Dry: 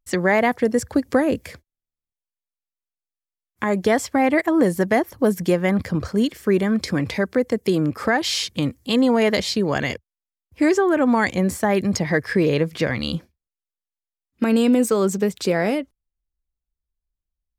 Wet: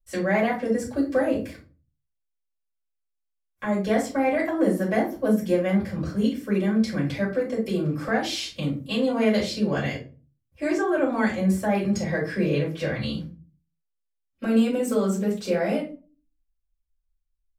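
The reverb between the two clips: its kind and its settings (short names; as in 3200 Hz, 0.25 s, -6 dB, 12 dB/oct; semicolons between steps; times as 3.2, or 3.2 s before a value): shoebox room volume 160 m³, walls furnished, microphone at 5.8 m; gain -17 dB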